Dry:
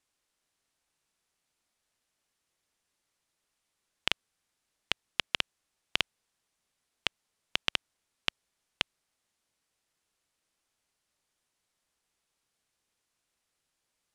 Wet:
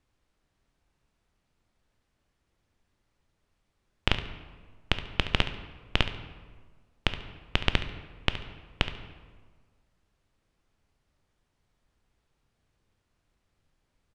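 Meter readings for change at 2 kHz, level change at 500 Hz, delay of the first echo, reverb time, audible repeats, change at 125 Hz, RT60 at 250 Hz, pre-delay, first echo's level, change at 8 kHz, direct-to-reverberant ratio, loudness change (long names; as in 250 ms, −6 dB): +3.0 dB, +9.0 dB, 70 ms, 1.5 s, 1, +19.0 dB, 1.6 s, 8 ms, −13.0 dB, −4.5 dB, 8.0 dB, +2.5 dB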